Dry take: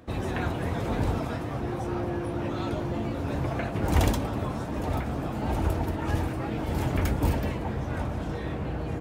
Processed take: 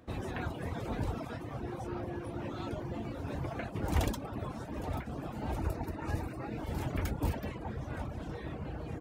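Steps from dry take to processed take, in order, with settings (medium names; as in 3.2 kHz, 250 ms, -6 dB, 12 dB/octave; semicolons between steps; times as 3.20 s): reverb removal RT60 0.72 s; 5.58–6.58 s: Butterworth band-stop 3.2 kHz, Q 4.9; trim -6.5 dB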